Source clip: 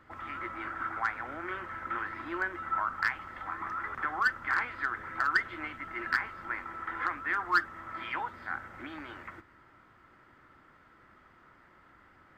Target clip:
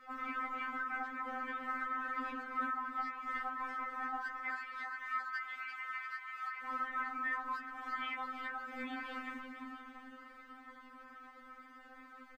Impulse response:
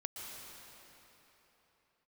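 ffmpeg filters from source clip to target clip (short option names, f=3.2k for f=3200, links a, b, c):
-filter_complex "[0:a]acompressor=threshold=-34dB:ratio=6,alimiter=level_in=10dB:limit=-24dB:level=0:latency=1:release=322,volume=-10dB,asettb=1/sr,asplit=3[a][b][c];[a]atrim=end=4.424[d];[b]atrim=start=4.42:end=6.63,asetpts=PTS-STARTPTS,afade=t=in:d=0.004:c=qsin,afade=t=out:st=2.206:d=0.004:c=qsin,highpass=f=1.1k:w=0.5412,highpass=f=1.1k:w=1.3066[e];[c]atrim=start=6.626[f];[d][e]acrossfade=d=0.004:c1=hsin:c2=qsin[g];[g][f]acrossfade=d=0.004:c1=qsin:c2=hsin,asplit=8[h][i][j][k][l][m][n][o];[i]adelay=345,afreqshift=-32,volume=-7dB[p];[j]adelay=690,afreqshift=-64,volume=-12.4dB[q];[k]adelay=1035,afreqshift=-96,volume=-17.7dB[r];[l]adelay=1380,afreqshift=-128,volume=-23.1dB[s];[m]adelay=1725,afreqshift=-160,volume=-28.4dB[t];[n]adelay=2070,afreqshift=-192,volume=-33.8dB[u];[o]adelay=2415,afreqshift=-224,volume=-39.1dB[v];[h][p][q][r][s][t][u][v]amix=inputs=8:normalize=0,afftfilt=real='hypot(re,im)*cos(2*PI*random(0))':imag='hypot(re,im)*sin(2*PI*random(1))':win_size=512:overlap=0.75,afftfilt=real='re*3.46*eq(mod(b,12),0)':imag='im*3.46*eq(mod(b,12),0)':win_size=2048:overlap=0.75,volume=11.5dB"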